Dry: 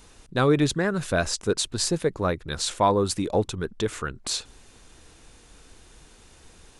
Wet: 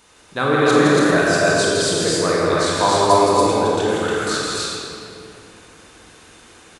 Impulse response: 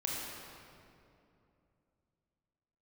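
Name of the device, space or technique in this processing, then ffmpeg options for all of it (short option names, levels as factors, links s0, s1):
stadium PA: -filter_complex "[0:a]highpass=f=210:p=1,equalizer=f=1500:t=o:w=2.2:g=4,aecho=1:1:166.2|250.7|282.8:0.631|0.355|0.891[s0];[1:a]atrim=start_sample=2205[s1];[s0][s1]afir=irnorm=-1:irlink=0"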